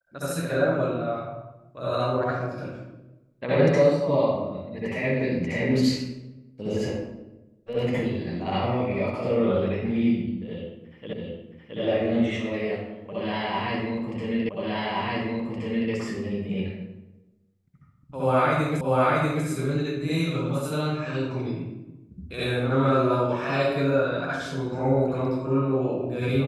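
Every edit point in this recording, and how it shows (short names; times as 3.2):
11.13 repeat of the last 0.67 s
14.49 repeat of the last 1.42 s
18.81 repeat of the last 0.64 s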